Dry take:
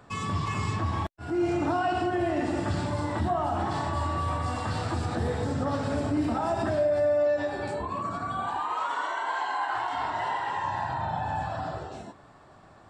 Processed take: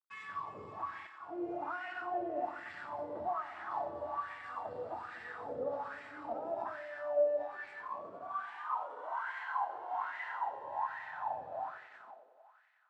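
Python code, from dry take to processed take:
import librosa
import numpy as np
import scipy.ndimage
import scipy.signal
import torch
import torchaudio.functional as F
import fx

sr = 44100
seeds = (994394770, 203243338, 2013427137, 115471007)

y = np.sign(x) * np.maximum(np.abs(x) - 10.0 ** (-44.5 / 20.0), 0.0)
y = fx.echo_thinned(y, sr, ms=91, feedback_pct=84, hz=320.0, wet_db=-10)
y = fx.wah_lfo(y, sr, hz=1.2, low_hz=490.0, high_hz=2000.0, q=5.0)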